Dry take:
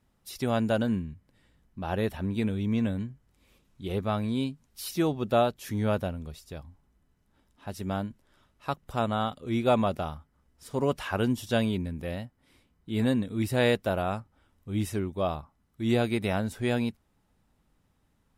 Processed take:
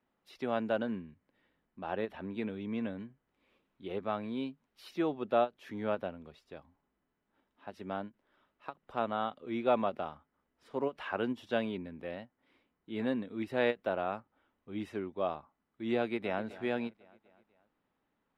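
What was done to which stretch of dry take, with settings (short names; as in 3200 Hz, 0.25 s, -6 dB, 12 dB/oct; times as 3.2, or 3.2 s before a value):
16–16.43 echo throw 0.25 s, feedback 55%, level -17 dB
whole clip: three-band isolator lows -18 dB, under 220 Hz, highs -23 dB, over 3500 Hz; ending taper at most 450 dB/s; gain -4 dB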